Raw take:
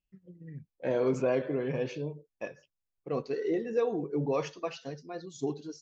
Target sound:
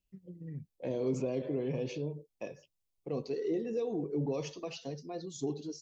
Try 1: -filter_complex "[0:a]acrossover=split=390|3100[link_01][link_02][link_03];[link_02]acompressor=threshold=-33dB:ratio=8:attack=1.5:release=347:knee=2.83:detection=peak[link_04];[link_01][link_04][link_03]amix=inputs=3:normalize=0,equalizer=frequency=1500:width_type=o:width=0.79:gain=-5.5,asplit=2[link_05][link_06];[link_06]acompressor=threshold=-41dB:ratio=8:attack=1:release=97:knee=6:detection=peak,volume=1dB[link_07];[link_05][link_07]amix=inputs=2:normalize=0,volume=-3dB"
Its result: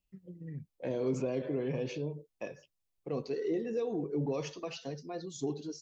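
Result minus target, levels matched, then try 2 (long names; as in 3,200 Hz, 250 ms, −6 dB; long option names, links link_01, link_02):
2,000 Hz band +3.0 dB
-filter_complex "[0:a]acrossover=split=390|3100[link_01][link_02][link_03];[link_02]acompressor=threshold=-33dB:ratio=8:attack=1.5:release=347:knee=2.83:detection=peak[link_04];[link_01][link_04][link_03]amix=inputs=3:normalize=0,equalizer=frequency=1500:width_type=o:width=0.79:gain=-13.5,asplit=2[link_05][link_06];[link_06]acompressor=threshold=-41dB:ratio=8:attack=1:release=97:knee=6:detection=peak,volume=1dB[link_07];[link_05][link_07]amix=inputs=2:normalize=0,volume=-3dB"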